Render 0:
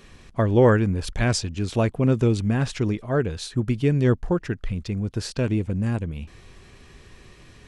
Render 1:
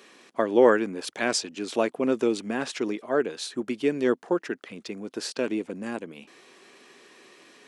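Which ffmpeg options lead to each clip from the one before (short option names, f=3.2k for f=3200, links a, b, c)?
-af "highpass=f=270:w=0.5412,highpass=f=270:w=1.3066"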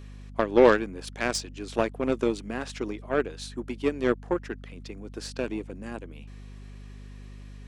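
-af "aeval=exprs='val(0)+0.0158*(sin(2*PI*50*n/s)+sin(2*PI*2*50*n/s)/2+sin(2*PI*3*50*n/s)/3+sin(2*PI*4*50*n/s)/4+sin(2*PI*5*50*n/s)/5)':c=same,aeval=exprs='0.531*(cos(1*acos(clip(val(0)/0.531,-1,1)))-cos(1*PI/2))+0.0211*(cos(5*acos(clip(val(0)/0.531,-1,1)))-cos(5*PI/2))+0.0531*(cos(7*acos(clip(val(0)/0.531,-1,1)))-cos(7*PI/2))':c=same"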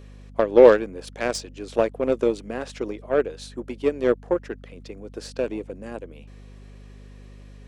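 -af "equalizer=f=520:w=1.8:g=9,volume=-1dB"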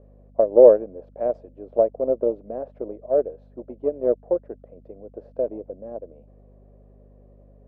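-af "lowpass=f=620:t=q:w=4.8,volume=-7.5dB"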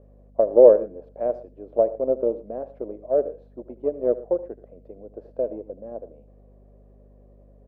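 -af "aecho=1:1:77|115:0.141|0.1,volume=-1dB"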